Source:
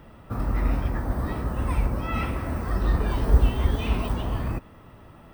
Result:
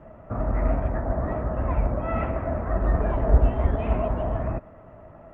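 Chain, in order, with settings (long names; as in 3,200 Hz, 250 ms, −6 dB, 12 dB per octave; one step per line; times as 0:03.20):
low-pass filter 2,100 Hz 24 dB per octave
parametric band 640 Hz +14 dB 0.32 octaves
Opus 32 kbit/s 48,000 Hz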